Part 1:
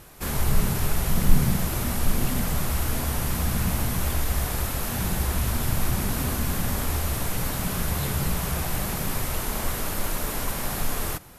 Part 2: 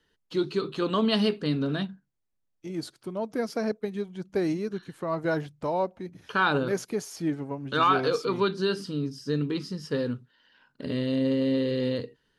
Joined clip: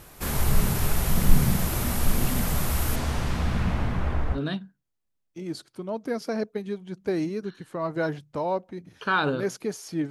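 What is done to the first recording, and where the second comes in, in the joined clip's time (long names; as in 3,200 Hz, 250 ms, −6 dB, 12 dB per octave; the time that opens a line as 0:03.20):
part 1
0:02.95–0:04.39: low-pass filter 7,100 Hz → 1,300 Hz
0:04.36: continue with part 2 from 0:01.64, crossfade 0.06 s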